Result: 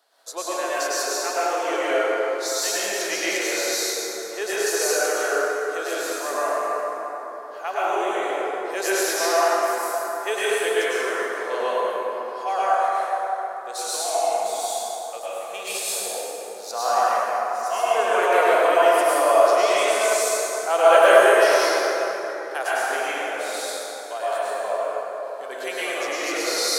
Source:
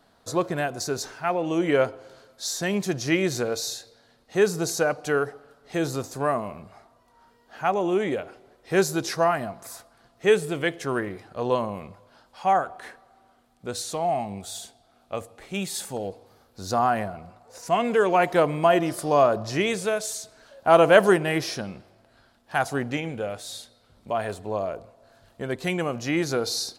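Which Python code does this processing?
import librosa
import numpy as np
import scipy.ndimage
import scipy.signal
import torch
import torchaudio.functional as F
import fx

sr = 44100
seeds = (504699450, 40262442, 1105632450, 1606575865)

y = scipy.signal.sosfilt(scipy.signal.butter(4, 450.0, 'highpass', fs=sr, output='sos'), x)
y = fx.high_shelf(y, sr, hz=3600.0, db=8.5)
y = fx.rev_plate(y, sr, seeds[0], rt60_s=4.2, hf_ratio=0.45, predelay_ms=90, drr_db=-10.0)
y = y * librosa.db_to_amplitude(-6.5)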